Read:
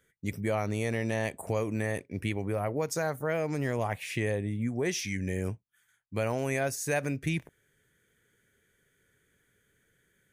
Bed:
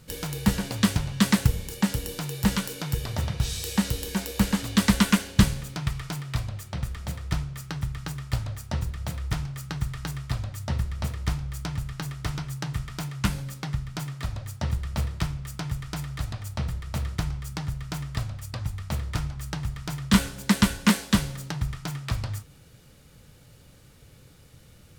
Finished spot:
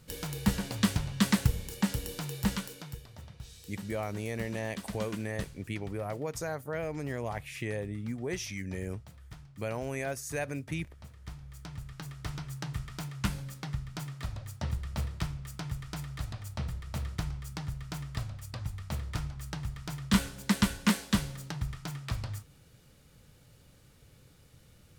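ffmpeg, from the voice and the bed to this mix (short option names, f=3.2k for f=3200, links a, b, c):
-filter_complex "[0:a]adelay=3450,volume=-5dB[a];[1:a]volume=9dB,afade=t=out:st=2.32:d=0.75:silence=0.177828,afade=t=in:st=11.14:d=1.45:silence=0.199526[b];[a][b]amix=inputs=2:normalize=0"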